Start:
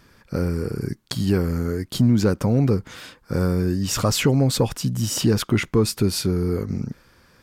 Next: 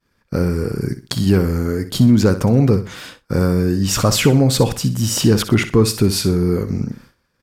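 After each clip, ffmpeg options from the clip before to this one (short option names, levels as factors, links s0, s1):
-af "aecho=1:1:62|124|186:0.251|0.0754|0.0226,agate=range=0.0224:threshold=0.00794:ratio=3:detection=peak,volume=1.78"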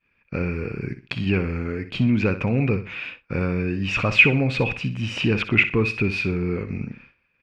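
-af "lowpass=f=2500:t=q:w=15,volume=0.398"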